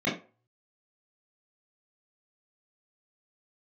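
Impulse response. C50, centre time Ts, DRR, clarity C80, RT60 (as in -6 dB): 8.0 dB, 33 ms, -9.0 dB, 14.0 dB, 0.35 s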